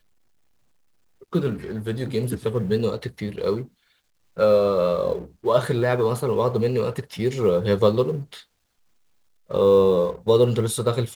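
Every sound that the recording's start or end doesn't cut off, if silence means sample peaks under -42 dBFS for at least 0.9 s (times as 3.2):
1.22–8.41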